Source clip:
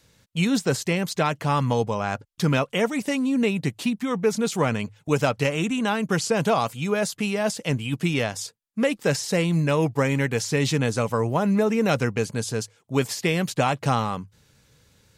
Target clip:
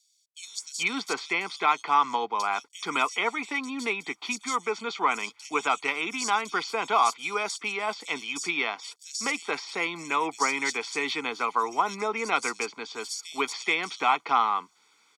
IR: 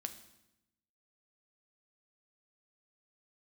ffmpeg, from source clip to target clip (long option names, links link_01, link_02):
-filter_complex "[0:a]acrusher=bits=10:mix=0:aa=0.000001,highpass=frequency=280:width=0.5412,highpass=frequency=280:width=1.3066,acrossover=split=450 8000:gain=0.2 1 0.0708[link_01][link_02][link_03];[link_01][link_02][link_03]amix=inputs=3:normalize=0,aecho=1:1:0.9:0.87,acrossover=split=4500[link_04][link_05];[link_04]adelay=430[link_06];[link_06][link_05]amix=inputs=2:normalize=0"